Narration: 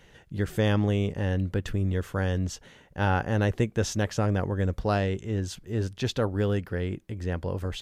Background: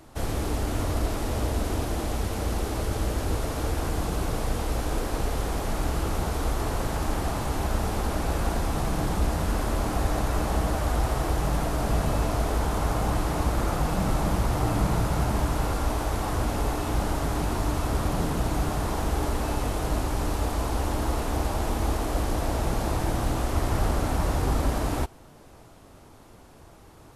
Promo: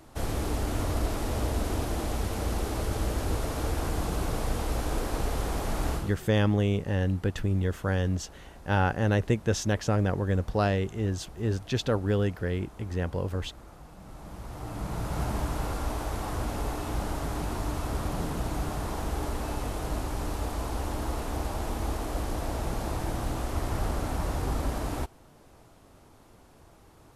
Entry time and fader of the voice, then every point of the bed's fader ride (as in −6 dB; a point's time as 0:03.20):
5.70 s, 0.0 dB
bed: 0:05.94 −2 dB
0:06.23 −23 dB
0:13.97 −23 dB
0:15.21 −5 dB